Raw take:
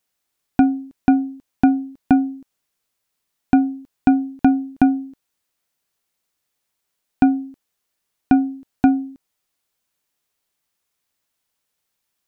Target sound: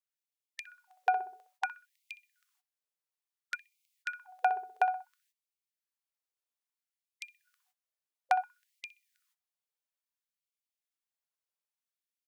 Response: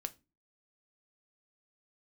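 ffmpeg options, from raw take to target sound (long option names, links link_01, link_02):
-filter_complex "[0:a]asplit=2[link_01][link_02];[link_02]adelay=63,lowpass=frequency=1100:poles=1,volume=-6.5dB,asplit=2[link_03][link_04];[link_04]adelay=63,lowpass=frequency=1100:poles=1,volume=0.52,asplit=2[link_05][link_06];[link_06]adelay=63,lowpass=frequency=1100:poles=1,volume=0.52,asplit=2[link_07][link_08];[link_08]adelay=63,lowpass=frequency=1100:poles=1,volume=0.52,asplit=2[link_09][link_10];[link_10]adelay=63,lowpass=frequency=1100:poles=1,volume=0.52,asplit=2[link_11][link_12];[link_12]adelay=63,lowpass=frequency=1100:poles=1,volume=0.52[link_13];[link_01][link_03][link_05][link_07][link_09][link_11][link_13]amix=inputs=7:normalize=0,agate=range=-16dB:threshold=-39dB:ratio=16:detection=peak,afftfilt=real='re*gte(b*sr/1024,370*pow(2100/370,0.5+0.5*sin(2*PI*0.59*pts/sr)))':imag='im*gte(b*sr/1024,370*pow(2100/370,0.5+0.5*sin(2*PI*0.59*pts/sr)))':win_size=1024:overlap=0.75,volume=-3dB"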